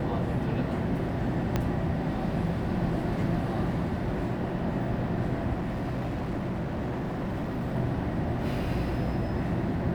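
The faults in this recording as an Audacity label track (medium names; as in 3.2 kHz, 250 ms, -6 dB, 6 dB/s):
1.560000	1.560000	pop -13 dBFS
5.530000	7.760000	clipped -27.5 dBFS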